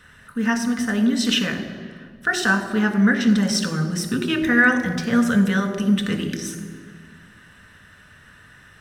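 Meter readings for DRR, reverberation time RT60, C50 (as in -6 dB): 3.5 dB, 1.8 s, 8.5 dB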